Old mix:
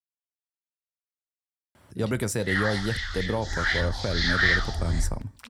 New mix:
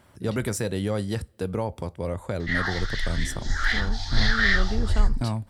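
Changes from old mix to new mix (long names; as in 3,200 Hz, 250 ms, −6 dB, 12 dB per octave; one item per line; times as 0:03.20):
speech: entry −1.75 s
master: remove high-pass filter 50 Hz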